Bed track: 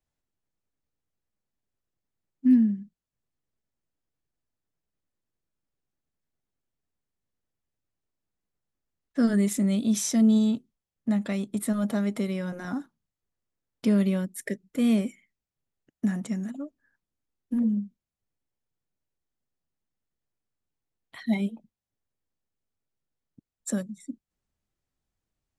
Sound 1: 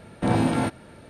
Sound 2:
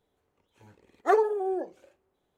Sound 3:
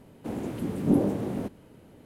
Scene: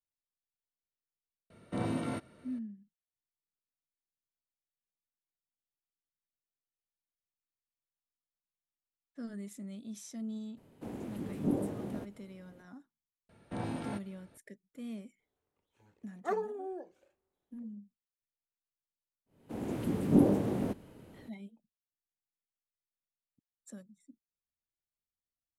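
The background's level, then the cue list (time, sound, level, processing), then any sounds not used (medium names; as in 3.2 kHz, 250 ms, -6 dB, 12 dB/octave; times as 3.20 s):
bed track -20 dB
1.50 s: add 1 -11.5 dB + comb of notches 830 Hz
10.57 s: add 3 -9 dB
13.29 s: add 1 -16 dB
15.19 s: add 2 -11.5 dB
19.25 s: add 3 -1.5 dB, fades 0.02 s + fade-in on the opening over 0.54 s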